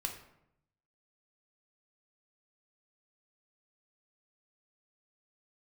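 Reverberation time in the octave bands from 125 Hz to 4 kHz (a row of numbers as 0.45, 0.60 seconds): 1.1, 0.95, 0.80, 0.75, 0.65, 0.50 seconds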